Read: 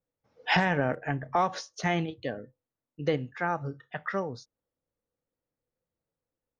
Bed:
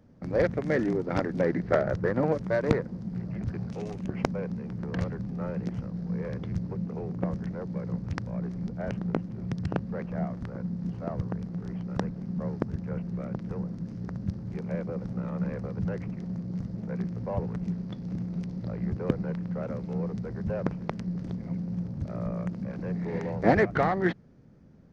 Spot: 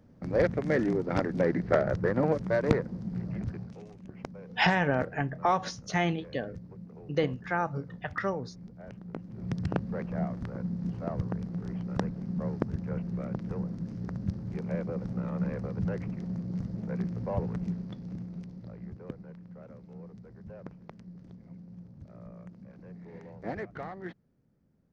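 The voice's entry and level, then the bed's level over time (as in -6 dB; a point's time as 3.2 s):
4.10 s, 0.0 dB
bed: 3.39 s -0.5 dB
3.88 s -13 dB
9.07 s -13 dB
9.52 s -0.5 dB
17.56 s -0.5 dB
19.22 s -15 dB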